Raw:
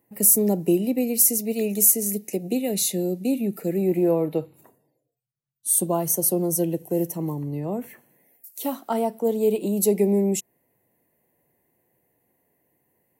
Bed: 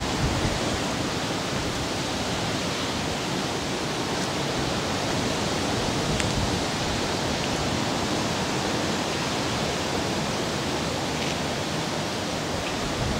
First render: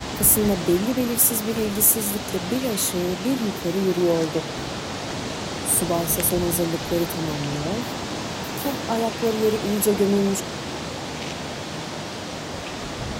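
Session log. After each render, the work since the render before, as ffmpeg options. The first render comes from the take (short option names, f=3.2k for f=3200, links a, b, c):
-filter_complex "[1:a]volume=-3.5dB[a];[0:a][a]amix=inputs=2:normalize=0"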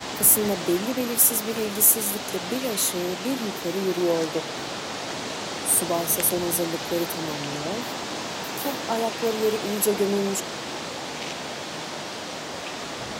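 -af "highpass=f=370:p=1"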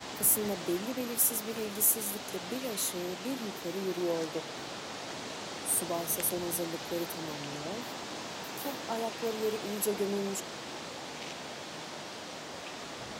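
-af "volume=-9dB"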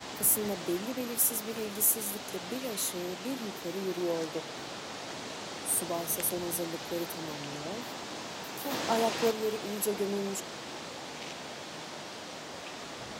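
-filter_complex "[0:a]asplit=3[a][b][c];[a]afade=t=out:st=8.7:d=0.02[d];[b]acontrast=62,afade=t=in:st=8.7:d=0.02,afade=t=out:st=9.3:d=0.02[e];[c]afade=t=in:st=9.3:d=0.02[f];[d][e][f]amix=inputs=3:normalize=0"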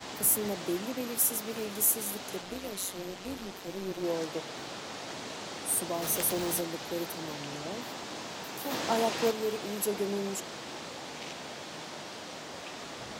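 -filter_complex "[0:a]asettb=1/sr,asplit=3[a][b][c];[a]atrim=end=2.414[d];[b]atrim=start=2.41:end=4.04,asetpts=PTS-STARTPTS,afade=t=in:d=0.004:c=qsin,afade=t=out:st=1.626:d=0.004:c=qsin,tremolo=f=190:d=0.667[e];[c]atrim=start=4.036[f];[d][e]acrossfade=d=0.004:c1=hsin:c2=qsin[g];[g][f]acrossfade=d=0.004:c1=qsin:c2=hsin,asettb=1/sr,asplit=3[h][i][j];[h]atrim=end=6.024[k];[i]atrim=start=6.02:end=6.61,asetpts=PTS-STARTPTS,afade=t=in:d=0.004:c=qsin,afade=t=out:st=0.586:d=0.004:c=qsin,aeval=exprs='val(0)+0.5*0.0188*sgn(val(0))':c=same[l];[j]atrim=start=6.606[m];[k][l]acrossfade=d=0.004:c1=hsin:c2=qsin[n];[n][m]acrossfade=d=0.004:c1=qsin:c2=hsin"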